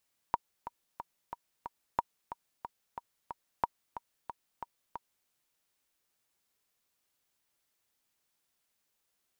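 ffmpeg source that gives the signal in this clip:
-f lavfi -i "aevalsrc='pow(10,(-13.5-12.5*gte(mod(t,5*60/182),60/182))/20)*sin(2*PI*946*mod(t,60/182))*exp(-6.91*mod(t,60/182)/0.03)':d=4.94:s=44100"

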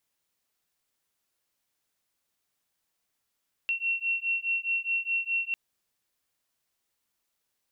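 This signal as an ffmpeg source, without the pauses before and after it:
-f lavfi -i "aevalsrc='0.0335*(sin(2*PI*2720*t)+sin(2*PI*2724.8*t))':d=1.85:s=44100"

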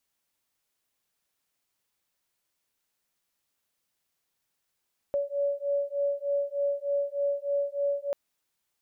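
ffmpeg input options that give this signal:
-f lavfi -i "aevalsrc='0.0355*(sin(2*PI*565*t)+sin(2*PI*568.3*t))':d=2.99:s=44100"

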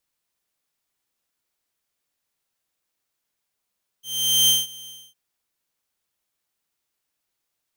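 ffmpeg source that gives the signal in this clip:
-f lavfi -i "aevalsrc='0.282*(2*mod(3140*t,1)-1)':d=1.11:s=44100,afade=t=in:d=0.452,afade=t=out:st=0.452:d=0.183:silence=0.0668,afade=t=out:st=0.85:d=0.26"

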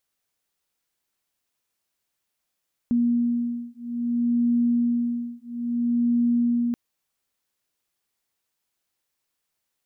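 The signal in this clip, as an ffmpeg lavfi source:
-f lavfi -i "aevalsrc='0.0668*(sin(2*PI*238*t)+sin(2*PI*238.6*t))':d=3.83:s=44100"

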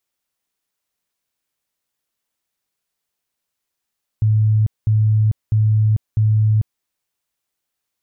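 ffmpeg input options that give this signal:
-f lavfi -i "aevalsrc='0.266*sin(2*PI*108*mod(t,0.65))*lt(mod(t,0.65),48/108)':d=2.6:s=44100"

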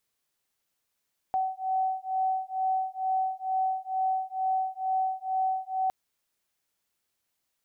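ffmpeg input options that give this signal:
-f lavfi -i "aevalsrc='0.0355*(sin(2*PI*756*t)+sin(2*PI*758.2*t))':d=4.56:s=44100"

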